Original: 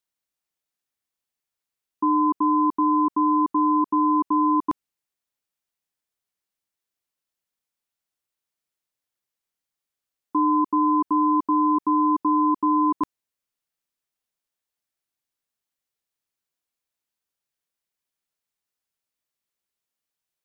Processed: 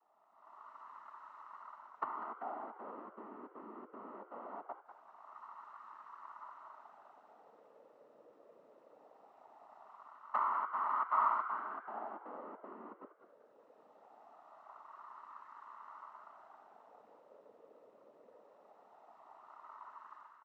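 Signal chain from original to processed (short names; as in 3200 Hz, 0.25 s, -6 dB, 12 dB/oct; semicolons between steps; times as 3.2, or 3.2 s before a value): per-bin compression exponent 0.6; AGC gain up to 14 dB; flipped gate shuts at -19 dBFS, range -29 dB; tube stage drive 31 dB, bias 0.7; in parallel at -10 dB: bit-crush 5-bit; on the sum: wah 0.21 Hz 510–1100 Hz, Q 12; noise vocoder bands 12; on a send: frequency-shifting echo 0.195 s, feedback 37%, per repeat +110 Hz, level -11.5 dB; on the sum: gain +15 dB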